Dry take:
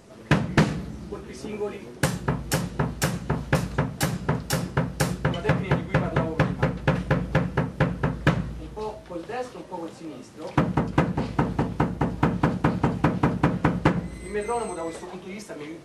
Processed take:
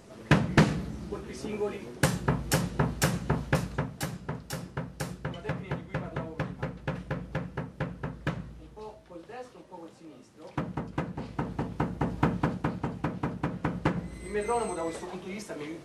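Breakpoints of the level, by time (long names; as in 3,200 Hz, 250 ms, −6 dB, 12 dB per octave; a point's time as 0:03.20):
0:03.28 −1.5 dB
0:04.25 −11 dB
0:11.15 −11 dB
0:12.23 −3.5 dB
0:12.82 −10 dB
0:13.51 −10 dB
0:14.51 −1.5 dB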